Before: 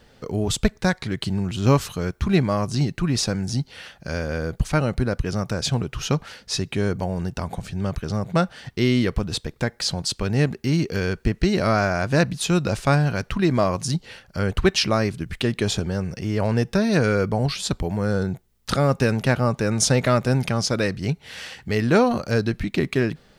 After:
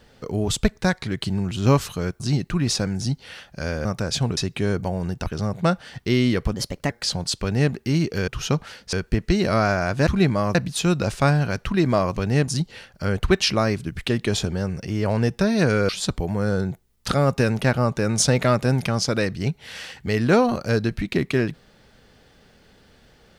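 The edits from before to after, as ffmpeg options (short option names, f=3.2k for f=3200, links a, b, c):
-filter_complex "[0:a]asplit=14[a][b][c][d][e][f][g][h][i][j][k][l][m][n];[a]atrim=end=2.202[o];[b]atrim=start=2.678:end=4.332[p];[c]atrim=start=5.358:end=5.882[q];[d]atrim=start=6.528:end=7.422[r];[e]atrim=start=7.968:end=9.254[s];[f]atrim=start=9.25:end=9.68,asetpts=PTS-STARTPTS,asetrate=52920,aresample=44100,atrim=end_sample=15802,asetpts=PTS-STARTPTS[t];[g]atrim=start=9.676:end=11.062[u];[h]atrim=start=5.878:end=6.532[v];[i]atrim=start=11.058:end=12.202[w];[j]atrim=start=2.198:end=2.682[x];[k]atrim=start=12.198:end=13.822[y];[l]atrim=start=10.198:end=10.512[z];[m]atrim=start=13.818:end=17.232[aa];[n]atrim=start=17.508[ab];[o][p]acrossfade=d=0.004:c1=hsin:c2=hsin[ac];[ac][q]acrossfade=d=0.004:c1=hsin:c2=hsin[ad];[ad][r]acrossfade=d=0.004:c1=hsin:c2=hsin[ae];[ae][s]acrossfade=d=0.004:c1=hsin:c2=hsin[af];[af][t]acrossfade=d=0.004:c1=hsin:c2=hsin[ag];[ag][u]acrossfade=d=0.004:c1=hsin:c2=hsin[ah];[ah][v]acrossfade=d=0.004:c1=hsin:c2=hsin[ai];[ai][w]acrossfade=d=0.004:c1=hsin:c2=hsin[aj];[aj][x]acrossfade=d=0.004:c1=hsin:c2=hsin[ak];[ak][y]acrossfade=d=0.004:c1=hsin:c2=hsin[al];[al][z]acrossfade=d=0.004:c1=hsin:c2=hsin[am];[am][aa]acrossfade=d=0.004:c1=hsin:c2=hsin[an];[an][ab]acrossfade=d=0.004:c1=hsin:c2=hsin"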